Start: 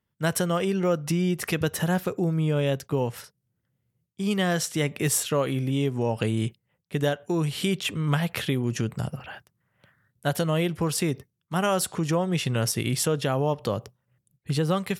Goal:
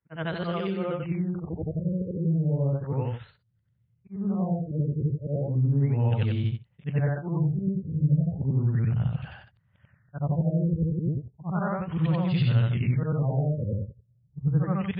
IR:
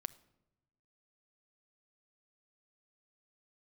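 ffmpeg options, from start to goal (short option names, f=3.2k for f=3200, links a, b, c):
-af "afftfilt=real='re':imag='-im':win_size=8192:overlap=0.75,asubboost=boost=7.5:cutoff=120,afftfilt=real='re*lt(b*sr/1024,560*pow(5000/560,0.5+0.5*sin(2*PI*0.34*pts/sr)))':imag='im*lt(b*sr/1024,560*pow(5000/560,0.5+0.5*sin(2*PI*0.34*pts/sr)))':win_size=1024:overlap=0.75"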